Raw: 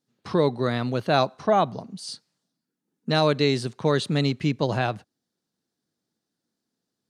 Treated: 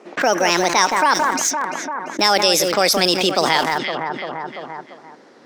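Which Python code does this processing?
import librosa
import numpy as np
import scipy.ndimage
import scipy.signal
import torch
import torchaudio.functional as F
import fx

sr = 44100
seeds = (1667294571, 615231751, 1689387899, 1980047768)

p1 = fx.speed_glide(x, sr, from_pct=148, to_pct=112)
p2 = scipy.signal.sosfilt(scipy.signal.butter(2, 350.0, 'highpass', fs=sr, output='sos'), p1)
p3 = fx.high_shelf(p2, sr, hz=2200.0, db=10.5)
p4 = p3 + fx.echo_alternate(p3, sr, ms=171, hz=2100.0, feedback_pct=52, wet_db=-10, dry=0)
p5 = fx.env_lowpass(p4, sr, base_hz=1500.0, full_db=-18.5)
p6 = np.where(np.abs(p5) >= 10.0 ** (-28.5 / 20.0), p5, 0.0)
p7 = p5 + F.gain(torch.from_numpy(p6), -9.0).numpy()
p8 = fx.env_flatten(p7, sr, amount_pct=70)
y = F.gain(torch.from_numpy(p8), -1.0).numpy()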